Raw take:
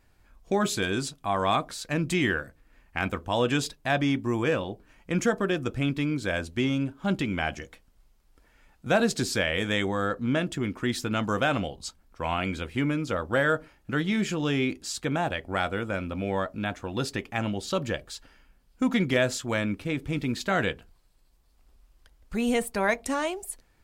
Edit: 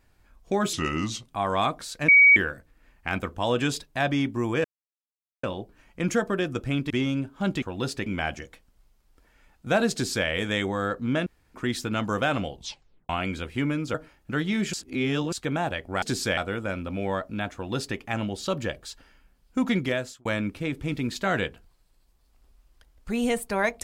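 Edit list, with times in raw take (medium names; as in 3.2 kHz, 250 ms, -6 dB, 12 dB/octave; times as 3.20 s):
0.73–1.17 s: speed 81%
1.98–2.26 s: bleep 2.26 kHz -11 dBFS
4.54 s: insert silence 0.79 s
6.01–6.54 s: delete
9.12–9.47 s: copy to 15.62 s
10.46–10.74 s: room tone
11.75 s: tape stop 0.54 s
13.14–13.54 s: delete
14.33–14.92 s: reverse
16.79–17.23 s: copy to 7.26 s
19.01–19.50 s: fade out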